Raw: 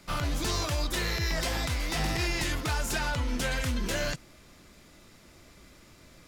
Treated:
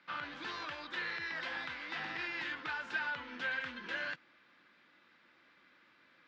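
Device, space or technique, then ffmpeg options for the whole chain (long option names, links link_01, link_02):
phone earpiece: -af "highpass=380,equalizer=frequency=410:width_type=q:width=4:gain=-9,equalizer=frequency=650:width_type=q:width=4:gain=-10,equalizer=frequency=1600:width_type=q:width=4:gain=8,lowpass=frequency=3600:width=0.5412,lowpass=frequency=3600:width=1.3066,volume=-7dB"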